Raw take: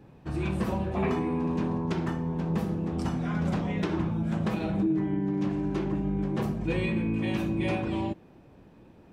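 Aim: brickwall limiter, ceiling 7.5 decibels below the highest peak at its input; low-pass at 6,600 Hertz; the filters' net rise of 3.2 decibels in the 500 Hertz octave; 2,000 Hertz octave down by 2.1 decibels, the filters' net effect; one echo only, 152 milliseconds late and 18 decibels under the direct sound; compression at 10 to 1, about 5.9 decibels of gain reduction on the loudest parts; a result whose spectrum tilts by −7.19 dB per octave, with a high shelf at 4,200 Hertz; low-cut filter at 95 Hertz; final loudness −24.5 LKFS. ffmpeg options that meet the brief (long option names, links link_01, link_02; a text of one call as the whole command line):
ffmpeg -i in.wav -af "highpass=95,lowpass=6600,equalizer=frequency=500:width_type=o:gain=4.5,equalizer=frequency=2000:width_type=o:gain=-5,highshelf=frequency=4200:gain=8.5,acompressor=threshold=-28dB:ratio=10,alimiter=level_in=4.5dB:limit=-24dB:level=0:latency=1,volume=-4.5dB,aecho=1:1:152:0.126,volume=12dB" out.wav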